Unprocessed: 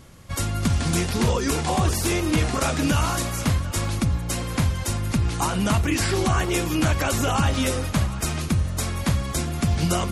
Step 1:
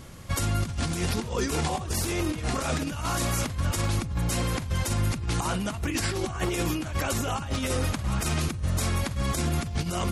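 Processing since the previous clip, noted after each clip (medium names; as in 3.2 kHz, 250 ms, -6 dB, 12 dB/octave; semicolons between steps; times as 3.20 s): compressor with a negative ratio -25 dBFS, ratio -0.5; peak limiter -17.5 dBFS, peak gain reduction 6 dB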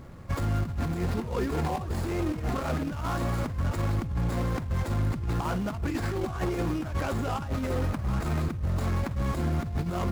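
median filter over 15 samples; hard clipper -22 dBFS, distortion -20 dB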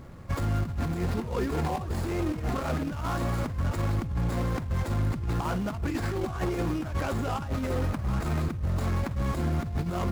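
no audible change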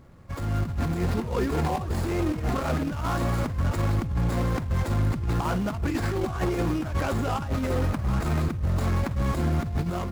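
level rider gain up to 9.5 dB; trim -6.5 dB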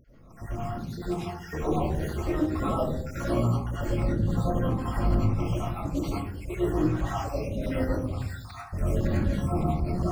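random holes in the spectrogram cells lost 76%; algorithmic reverb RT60 0.7 s, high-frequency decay 0.25×, pre-delay 55 ms, DRR -9.5 dB; trim -7 dB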